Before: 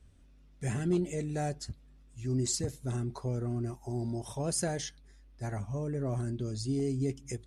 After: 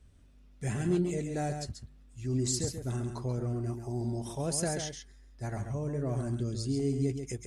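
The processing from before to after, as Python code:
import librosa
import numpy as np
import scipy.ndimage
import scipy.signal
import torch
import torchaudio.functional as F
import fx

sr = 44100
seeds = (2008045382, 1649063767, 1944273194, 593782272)

y = x + 10.0 ** (-7.0 / 20.0) * np.pad(x, (int(136 * sr / 1000.0), 0))[:len(x)]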